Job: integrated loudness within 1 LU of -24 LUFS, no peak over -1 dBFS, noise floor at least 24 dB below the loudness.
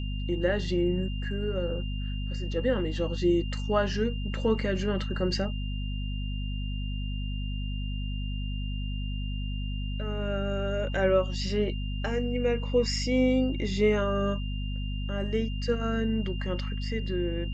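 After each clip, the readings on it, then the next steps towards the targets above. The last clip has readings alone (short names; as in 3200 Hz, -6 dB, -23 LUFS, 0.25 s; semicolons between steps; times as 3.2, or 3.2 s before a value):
hum 50 Hz; harmonics up to 250 Hz; hum level -29 dBFS; steady tone 2800 Hz; tone level -43 dBFS; loudness -29.5 LUFS; peak -12.0 dBFS; loudness target -24.0 LUFS
-> notches 50/100/150/200/250 Hz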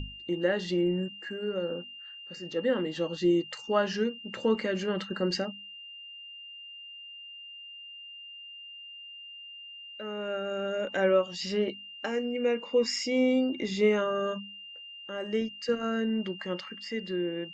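hum none; steady tone 2800 Hz; tone level -43 dBFS
-> notch 2800 Hz, Q 30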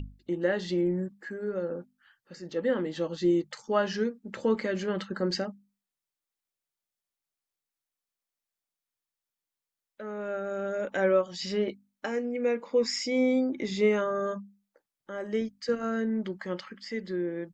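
steady tone none; loudness -30.0 LUFS; peak -12.0 dBFS; loudness target -24.0 LUFS
-> gain +6 dB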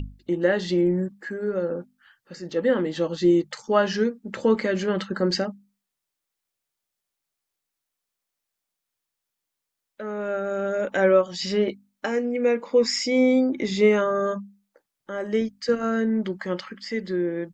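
loudness -24.0 LUFS; peak -6.0 dBFS; noise floor -84 dBFS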